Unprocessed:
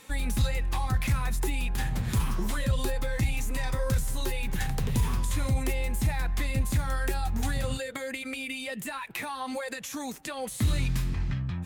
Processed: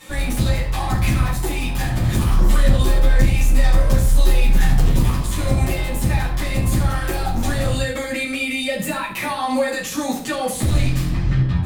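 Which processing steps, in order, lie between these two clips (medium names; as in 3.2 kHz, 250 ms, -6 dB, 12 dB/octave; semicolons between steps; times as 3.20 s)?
in parallel at -2 dB: peak limiter -24 dBFS, peak gain reduction 7.5 dB; on the sum: hard clipper -22 dBFS, distortion -13 dB; reverberation RT60 0.60 s, pre-delay 5 ms, DRR -9.5 dB; trim -3.5 dB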